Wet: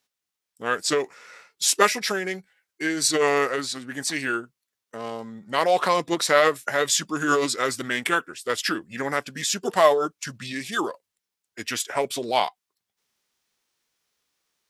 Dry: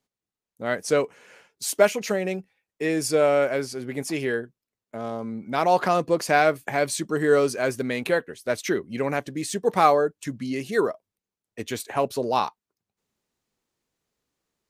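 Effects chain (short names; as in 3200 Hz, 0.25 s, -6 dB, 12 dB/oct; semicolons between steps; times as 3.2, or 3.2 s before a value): tilt shelf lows -8 dB, about 750 Hz; formant shift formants -3 st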